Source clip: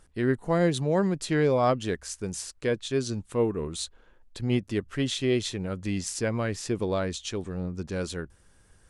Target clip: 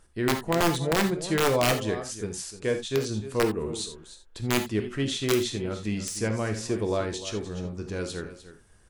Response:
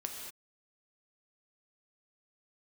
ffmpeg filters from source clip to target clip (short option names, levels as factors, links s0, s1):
-filter_complex "[0:a]aecho=1:1:301:0.2,aeval=exprs='(mod(5.62*val(0)+1,2)-1)/5.62':c=same[s0];[1:a]atrim=start_sample=2205,atrim=end_sample=3969[s1];[s0][s1]afir=irnorm=-1:irlink=0,volume=1.19"